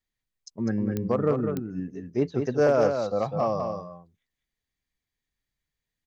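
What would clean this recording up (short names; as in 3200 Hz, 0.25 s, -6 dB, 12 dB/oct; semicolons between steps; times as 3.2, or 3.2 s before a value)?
clip repair -13 dBFS; de-click; inverse comb 0.201 s -6 dB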